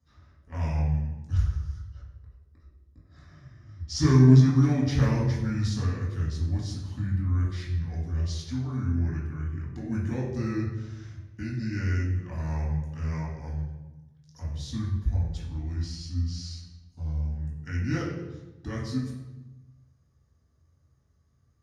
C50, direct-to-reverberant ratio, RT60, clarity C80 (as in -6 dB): 2.5 dB, -7.0 dB, 1.1 s, 5.0 dB